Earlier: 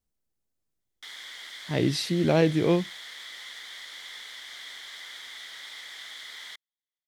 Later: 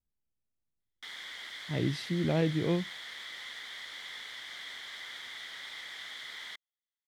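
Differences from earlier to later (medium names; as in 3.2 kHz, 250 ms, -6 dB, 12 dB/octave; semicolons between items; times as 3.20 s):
speech -9.0 dB; master: add tone controls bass +6 dB, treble -6 dB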